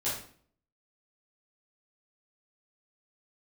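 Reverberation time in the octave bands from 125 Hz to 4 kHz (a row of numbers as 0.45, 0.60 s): 0.60, 0.65, 0.55, 0.50, 0.45, 0.40 s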